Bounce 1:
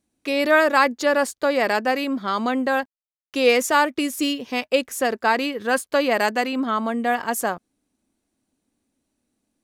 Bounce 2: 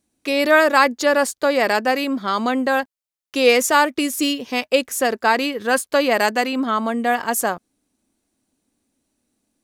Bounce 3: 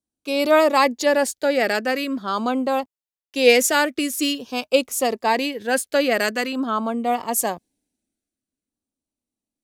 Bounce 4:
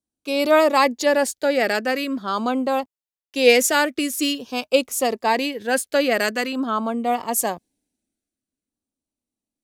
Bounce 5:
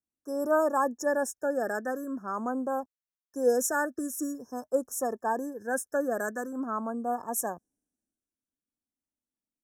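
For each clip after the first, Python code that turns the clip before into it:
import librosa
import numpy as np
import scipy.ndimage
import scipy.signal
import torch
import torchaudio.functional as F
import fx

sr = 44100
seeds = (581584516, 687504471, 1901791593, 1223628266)

y1 = fx.bass_treble(x, sr, bass_db=-1, treble_db=3)
y1 = y1 * librosa.db_to_amplitude(2.5)
y2 = fx.filter_lfo_notch(y1, sr, shape='saw_down', hz=0.46, low_hz=790.0, high_hz=2200.0, q=1.9)
y2 = fx.band_widen(y2, sr, depth_pct=40)
y2 = y2 * librosa.db_to_amplitude(-1.0)
y3 = y2
y4 = fx.brickwall_bandstop(y3, sr, low_hz=1800.0, high_hz=5200.0)
y4 = y4 * librosa.db_to_amplitude(-9.0)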